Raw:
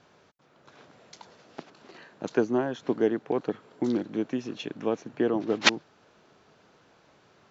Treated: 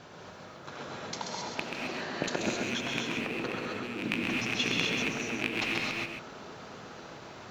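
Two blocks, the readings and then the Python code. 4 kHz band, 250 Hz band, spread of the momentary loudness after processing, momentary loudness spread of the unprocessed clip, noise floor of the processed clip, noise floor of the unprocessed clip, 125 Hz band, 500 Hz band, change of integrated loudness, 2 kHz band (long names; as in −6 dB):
+0.5 dB, −5.5 dB, 17 LU, 17 LU, −48 dBFS, −62 dBFS, +1.0 dB, −8.5 dB, −4.0 dB, +2.5 dB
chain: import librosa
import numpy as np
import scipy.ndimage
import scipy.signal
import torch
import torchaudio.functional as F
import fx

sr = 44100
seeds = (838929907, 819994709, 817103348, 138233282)

y = fx.rattle_buzz(x, sr, strikes_db=-39.0, level_db=-14.0)
y = fx.over_compress(y, sr, threshold_db=-37.0, ratio=-1.0)
y = y + 10.0 ** (-5.5 / 20.0) * np.pad(y, (int(133 * sr / 1000.0), 0))[:len(y)]
y = fx.rev_gated(y, sr, seeds[0], gate_ms=290, shape='rising', drr_db=-1.0)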